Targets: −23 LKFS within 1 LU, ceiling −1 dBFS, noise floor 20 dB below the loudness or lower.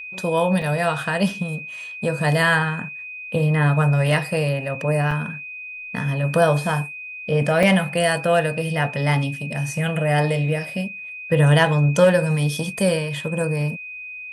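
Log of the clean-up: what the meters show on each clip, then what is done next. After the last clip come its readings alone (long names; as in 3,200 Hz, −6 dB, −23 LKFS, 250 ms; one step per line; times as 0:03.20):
number of dropouts 3; longest dropout 3.7 ms; interfering tone 2,500 Hz; level of the tone −32 dBFS; integrated loudness −20.5 LKFS; sample peak −2.5 dBFS; target loudness −23.0 LKFS
→ repair the gap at 0:00.62/0:05.11/0:07.63, 3.7 ms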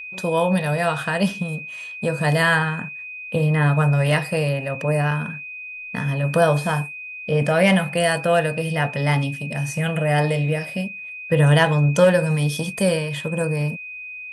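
number of dropouts 0; interfering tone 2,500 Hz; level of the tone −32 dBFS
→ notch filter 2,500 Hz, Q 30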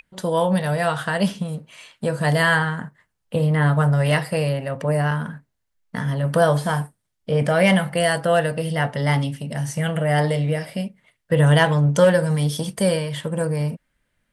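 interfering tone none found; integrated loudness −21.0 LKFS; sample peak −2.5 dBFS; target loudness −23.0 LKFS
→ level −2 dB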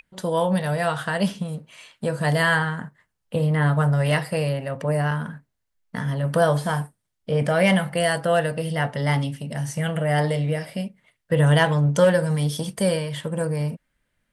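integrated loudness −23.0 LKFS; sample peak −4.5 dBFS; background noise floor −77 dBFS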